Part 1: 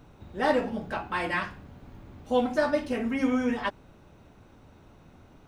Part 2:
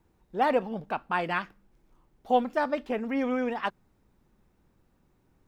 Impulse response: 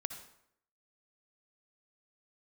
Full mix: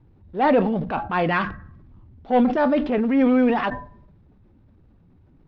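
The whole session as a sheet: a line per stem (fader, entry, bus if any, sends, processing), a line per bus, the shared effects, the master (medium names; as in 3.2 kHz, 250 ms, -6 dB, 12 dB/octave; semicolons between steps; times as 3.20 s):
-4.0 dB, 0.00 s, send -6.5 dB, spectral contrast enhancement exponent 2.8
+2.5 dB, 0.00 s, no send, bass shelf 430 Hz +6.5 dB; waveshaping leveller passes 1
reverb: on, RT60 0.75 s, pre-delay 52 ms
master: low-pass 4.3 kHz 24 dB/octave; transient shaper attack -6 dB, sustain +5 dB; decay stretcher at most 110 dB/s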